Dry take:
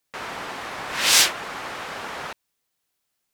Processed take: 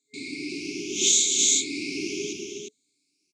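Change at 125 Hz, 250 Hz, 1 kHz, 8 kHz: -1.5 dB, +10.0 dB, under -40 dB, +3.5 dB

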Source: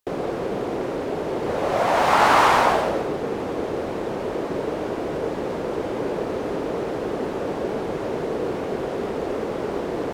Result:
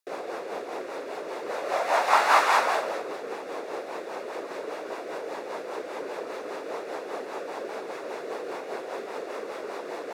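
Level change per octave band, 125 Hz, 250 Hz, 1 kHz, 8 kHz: under -25 dB, -14.5 dB, -5.0 dB, -2.5 dB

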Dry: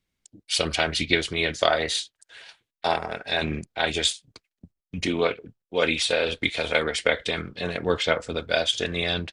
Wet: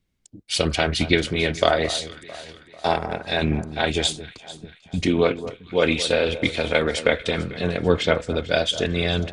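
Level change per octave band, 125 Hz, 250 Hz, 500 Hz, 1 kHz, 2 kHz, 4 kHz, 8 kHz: +8.0 dB, +6.5 dB, +4.0 dB, +2.0 dB, +0.5 dB, 0.0 dB, 0.0 dB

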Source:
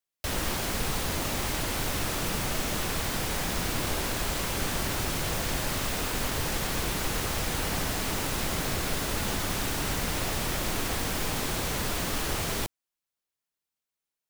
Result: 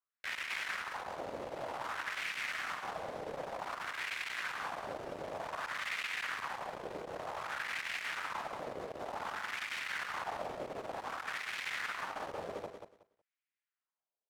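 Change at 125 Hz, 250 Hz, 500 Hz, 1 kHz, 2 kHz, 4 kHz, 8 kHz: -24.5 dB, -18.5 dB, -8.0 dB, -5.5 dB, -4.0 dB, -12.5 dB, -21.0 dB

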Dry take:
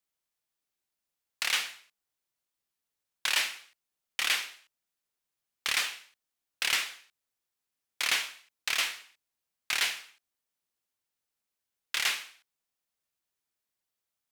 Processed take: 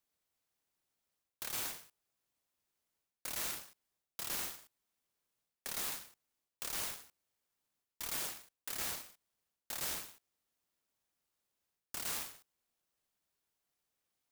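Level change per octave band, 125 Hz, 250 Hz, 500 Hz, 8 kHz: no reading, +2.5 dB, -2.5 dB, -5.5 dB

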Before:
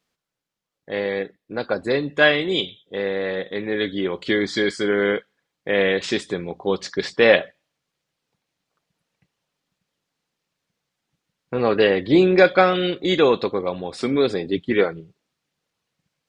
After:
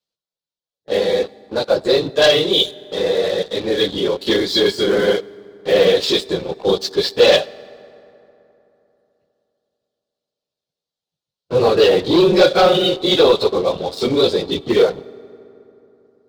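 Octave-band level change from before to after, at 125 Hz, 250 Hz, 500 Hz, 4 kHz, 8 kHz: +2.5 dB, +2.0 dB, +5.5 dB, +9.5 dB, +9.0 dB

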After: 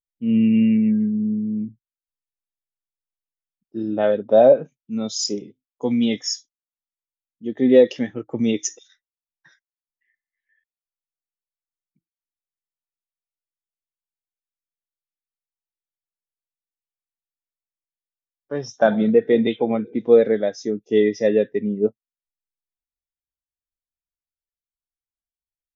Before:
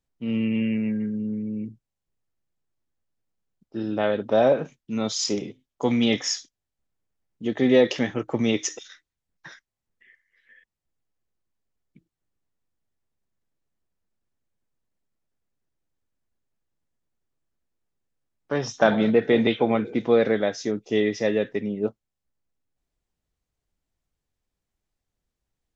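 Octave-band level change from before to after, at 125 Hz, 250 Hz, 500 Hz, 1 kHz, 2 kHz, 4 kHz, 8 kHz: +1.0 dB, +4.0 dB, +5.0 dB, +0.5 dB, -3.0 dB, -1.0 dB, no reading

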